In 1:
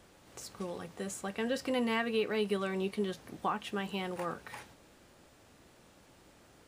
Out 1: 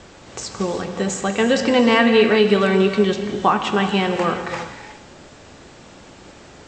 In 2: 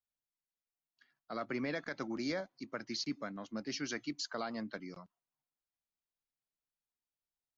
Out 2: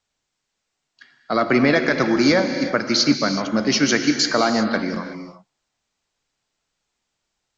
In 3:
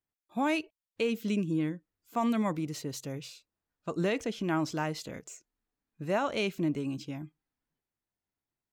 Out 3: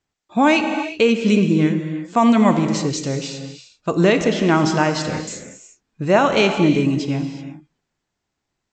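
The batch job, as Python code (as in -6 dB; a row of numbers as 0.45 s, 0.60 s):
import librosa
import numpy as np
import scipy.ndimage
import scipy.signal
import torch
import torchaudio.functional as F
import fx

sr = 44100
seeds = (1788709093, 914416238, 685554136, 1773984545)

y = scipy.signal.sosfilt(scipy.signal.butter(16, 8000.0, 'lowpass', fs=sr, output='sos'), x)
y = fx.rev_gated(y, sr, seeds[0], gate_ms=400, shape='flat', drr_db=6.0)
y = librosa.util.normalize(y) * 10.0 ** (-3 / 20.0)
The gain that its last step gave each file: +16.5 dB, +20.5 dB, +14.0 dB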